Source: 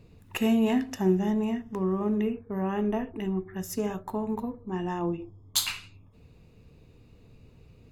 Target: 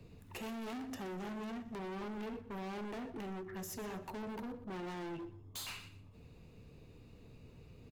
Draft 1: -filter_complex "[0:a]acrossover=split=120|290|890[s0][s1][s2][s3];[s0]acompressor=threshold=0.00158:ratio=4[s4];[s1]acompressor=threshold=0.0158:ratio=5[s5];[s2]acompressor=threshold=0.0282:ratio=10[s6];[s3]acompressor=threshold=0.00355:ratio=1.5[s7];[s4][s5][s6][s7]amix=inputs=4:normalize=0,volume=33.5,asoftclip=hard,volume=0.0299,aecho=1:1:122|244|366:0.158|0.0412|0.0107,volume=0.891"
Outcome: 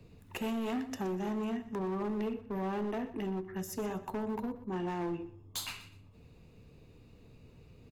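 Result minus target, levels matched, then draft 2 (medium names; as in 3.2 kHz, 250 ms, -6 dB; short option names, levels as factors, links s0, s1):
overload inside the chain: distortion -7 dB
-filter_complex "[0:a]acrossover=split=120|290|890[s0][s1][s2][s3];[s0]acompressor=threshold=0.00158:ratio=4[s4];[s1]acompressor=threshold=0.0158:ratio=5[s5];[s2]acompressor=threshold=0.0282:ratio=10[s6];[s3]acompressor=threshold=0.00355:ratio=1.5[s7];[s4][s5][s6][s7]amix=inputs=4:normalize=0,volume=106,asoftclip=hard,volume=0.00944,aecho=1:1:122|244|366:0.158|0.0412|0.0107,volume=0.891"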